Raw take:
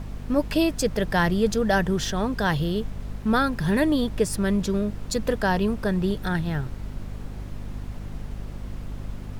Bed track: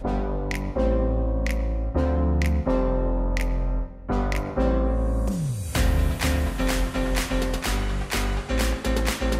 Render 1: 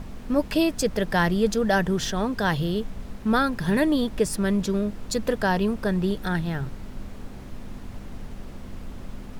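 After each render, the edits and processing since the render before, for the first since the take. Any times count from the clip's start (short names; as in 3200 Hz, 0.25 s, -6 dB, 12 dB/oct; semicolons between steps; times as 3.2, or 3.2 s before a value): notches 50/100/150 Hz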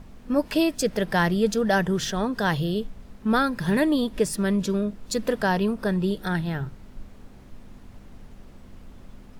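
noise print and reduce 8 dB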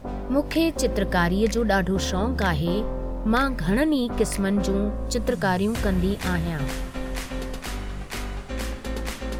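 add bed track -6.5 dB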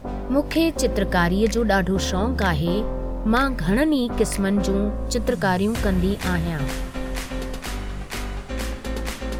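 gain +2 dB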